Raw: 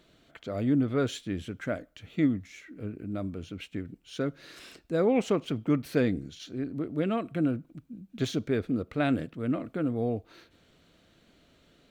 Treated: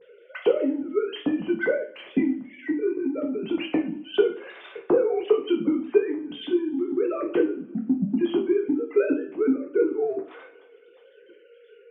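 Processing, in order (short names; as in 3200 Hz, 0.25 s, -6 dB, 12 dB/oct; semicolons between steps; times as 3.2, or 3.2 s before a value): sine-wave speech; bell 200 Hz +7.5 dB 2.9 oct; compressor 6:1, threshold -38 dBFS, peak gain reduction 26.5 dB; transient shaper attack +10 dB, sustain +6 dB; two-slope reverb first 0.36 s, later 1.7 s, from -26 dB, DRR -1 dB; gain +8.5 dB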